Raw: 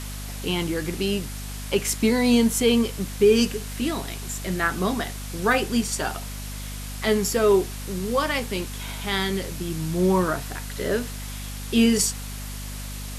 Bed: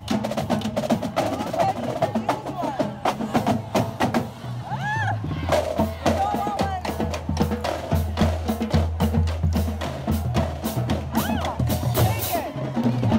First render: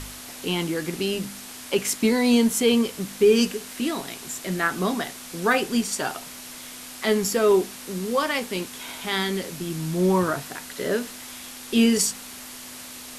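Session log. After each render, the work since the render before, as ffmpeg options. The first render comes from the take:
-af "bandreject=f=50:t=h:w=4,bandreject=f=100:t=h:w=4,bandreject=f=150:t=h:w=4,bandreject=f=200:t=h:w=4"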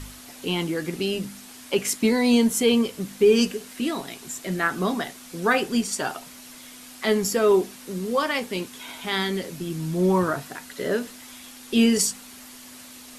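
-af "afftdn=nr=6:nf=-40"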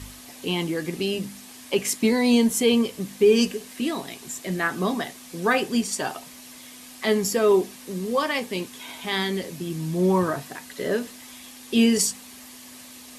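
-af "highpass=40,bandreject=f=1.4k:w=8.7"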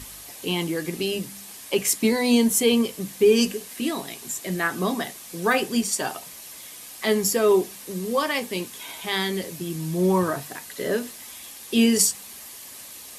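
-af "highshelf=f=9.7k:g=10,bandreject=f=50:t=h:w=6,bandreject=f=100:t=h:w=6,bandreject=f=150:t=h:w=6,bandreject=f=200:t=h:w=6,bandreject=f=250:t=h:w=6"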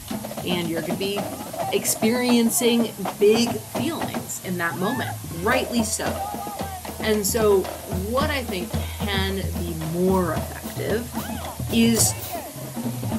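-filter_complex "[1:a]volume=-6.5dB[a];[0:a][a]amix=inputs=2:normalize=0"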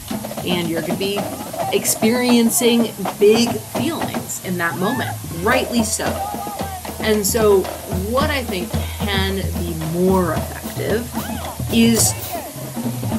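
-af "volume=4.5dB,alimiter=limit=-2dB:level=0:latency=1"

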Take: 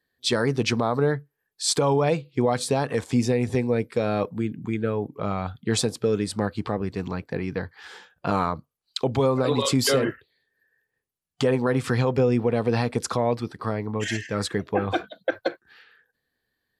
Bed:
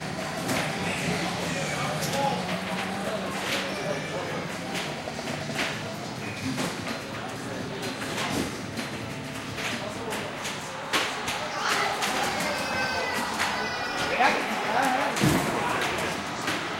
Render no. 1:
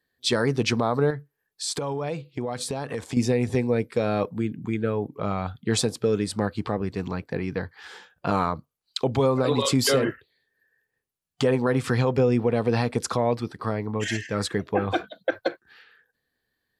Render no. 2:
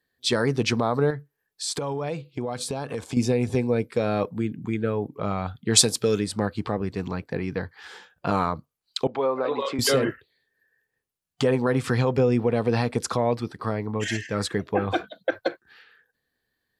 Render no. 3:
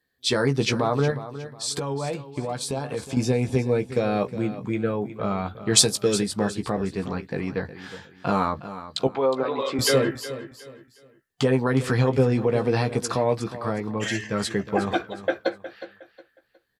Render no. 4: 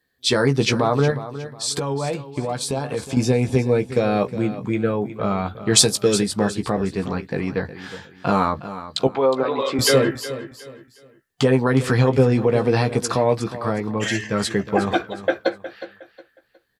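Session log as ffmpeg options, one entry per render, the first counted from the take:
-filter_complex "[0:a]asettb=1/sr,asplit=3[a][b][c];[a]atrim=end=1.104[d];[b]atrim=start=1.1:end=3.17,asetpts=PTS-STARTPTS,afade=t=in:d=0.004:c=qsin,afade=t=out:st=2.066:d=0.004:c=qsin,acompressor=threshold=-27dB:ratio=3:attack=3.2:release=140:knee=1:detection=peak[e];[c]atrim=start=3.166[f];[d][e]acrossfade=d=0.004:c1=hsin:c2=qsin[g];[g][f]acrossfade=d=0.004:c1=qsin:c2=hsin"
-filter_complex "[0:a]asettb=1/sr,asplit=3[a][b][c];[a]atrim=end=2.284[d];[b]atrim=start=2.28:end=3.9,asetpts=PTS-STARTPTS,afade=t=in:d=0.004:c=qsin,afade=t=out:st=1.616:d=0.004:c=qsin,bandreject=f=1.9k:w=7.9[e];[c]atrim=start=3.896[f];[d][e]acrossfade=d=0.004:c1=hsin:c2=qsin[g];[g][f]acrossfade=d=0.004:c1=qsin:c2=hsin,asplit=3[h][i][j];[h]afade=t=out:st=5.75:d=0.02[k];[i]highshelf=f=2.5k:g=12,afade=t=in:st=5.75:d=0.02,afade=t=out:st=6.19:d=0.02[l];[j]afade=t=in:st=6.19:d=0.02[m];[k][l][m]amix=inputs=3:normalize=0,asettb=1/sr,asplit=3[n][o][p];[n]atrim=end=9.074[q];[o]atrim=start=9.07:end=9.79,asetpts=PTS-STARTPTS,afade=t=in:d=0.004:c=qsin,afade=t=out:st=0.716:d=0.004:c=qsin,highpass=420,lowpass=2.2k[r];[p]atrim=start=9.786[s];[q][r]acrossfade=d=0.004:c1=hsin:c2=qsin[t];[t][s]acrossfade=d=0.004:c1=qsin:c2=hsin"
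-filter_complex "[0:a]asplit=2[a][b];[b]adelay=15,volume=-7dB[c];[a][c]amix=inputs=2:normalize=0,aecho=1:1:363|726|1089:0.211|0.0634|0.019"
-af "volume=4dB,alimiter=limit=-1dB:level=0:latency=1"

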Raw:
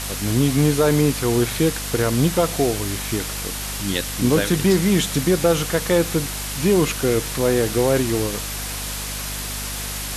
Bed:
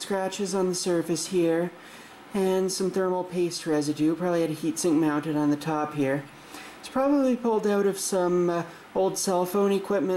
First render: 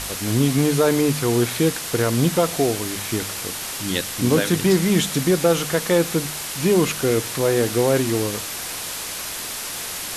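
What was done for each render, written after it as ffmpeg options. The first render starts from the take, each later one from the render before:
-af "bandreject=f=50:t=h:w=4,bandreject=f=100:t=h:w=4,bandreject=f=150:t=h:w=4,bandreject=f=200:t=h:w=4,bandreject=f=250:t=h:w=4"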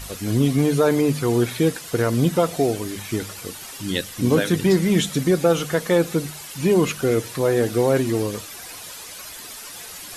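-af "afftdn=nr=11:nf=-30"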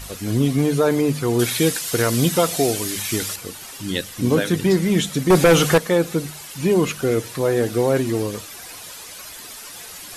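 -filter_complex "[0:a]asettb=1/sr,asplit=3[a][b][c];[a]atrim=end=1.394[d];[b]atrim=start=1.39:end=3.36,asetpts=PTS-STARTPTS,afade=t=in:d=0.004:c=qsin,afade=t=out:st=1.966:d=0.004:c=qsin,highshelf=f=2.1k:g=11[e];[c]atrim=start=3.356[f];[d][e]acrossfade=d=0.004:c1=hsin:c2=qsin[g];[g][f]acrossfade=d=0.004:c1=qsin:c2=hsin,asettb=1/sr,asplit=3[h][i][j];[h]atrim=end=5.304[k];[i]atrim=start=5.3:end=5.78,asetpts=PTS-STARTPTS,afade=t=in:d=0.004:c=qsin,afade=t=out:st=0.476:d=0.004:c=qsin,aeval=exprs='0.422*sin(PI/2*2*val(0)/0.422)':c=same[l];[j]atrim=start=5.776[m];[k][l]acrossfade=d=0.004:c1=hsin:c2=qsin[n];[n][m]acrossfade=d=0.004:c1=qsin:c2=hsin"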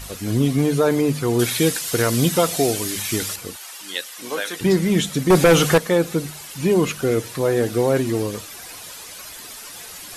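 -filter_complex "[0:a]asettb=1/sr,asplit=3[a][b][c];[a]atrim=end=3.564[d];[b]atrim=start=3.56:end=4.61,asetpts=PTS-STARTPTS,afade=t=in:d=0.004:c=qsin,afade=t=out:st=1.046:d=0.004:c=qsin,highpass=710[e];[c]atrim=start=4.606[f];[d][e]acrossfade=d=0.004:c1=hsin:c2=qsin[g];[g][f]acrossfade=d=0.004:c1=qsin:c2=hsin"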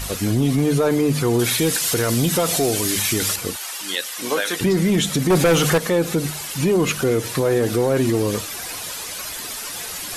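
-af "acontrast=73,alimiter=limit=-11dB:level=0:latency=1:release=73"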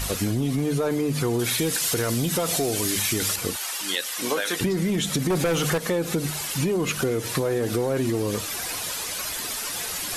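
-af "acompressor=threshold=-21dB:ratio=6"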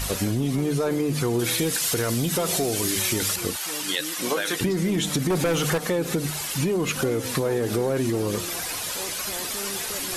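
-filter_complex "[1:a]volume=-14.5dB[a];[0:a][a]amix=inputs=2:normalize=0"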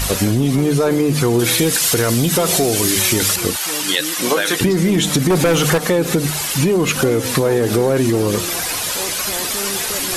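-af "volume=8.5dB"

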